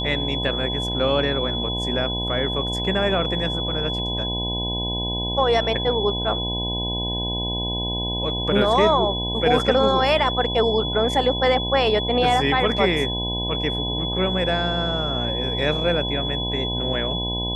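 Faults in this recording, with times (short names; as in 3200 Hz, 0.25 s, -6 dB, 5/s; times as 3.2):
buzz 60 Hz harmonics 17 -28 dBFS
tone 3400 Hz -26 dBFS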